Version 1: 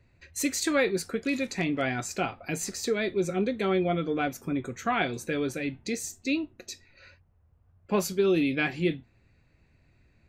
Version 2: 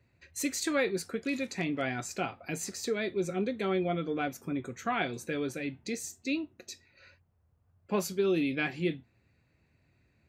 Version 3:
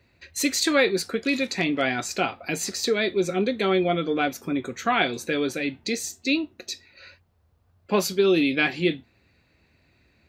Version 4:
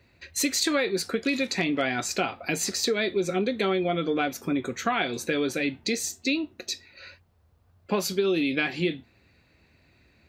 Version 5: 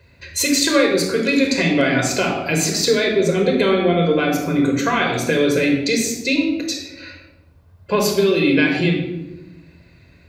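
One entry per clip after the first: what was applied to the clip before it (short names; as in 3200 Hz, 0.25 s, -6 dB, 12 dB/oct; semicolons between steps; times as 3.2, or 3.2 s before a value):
HPF 75 Hz; gain -4 dB
graphic EQ 125/4000/8000 Hz -7/+6/-3 dB; gain +8.5 dB
compressor 6:1, threshold -23 dBFS, peak gain reduction 8 dB; gain +1.5 dB
shoebox room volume 3700 m³, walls furnished, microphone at 5.1 m; gain +4.5 dB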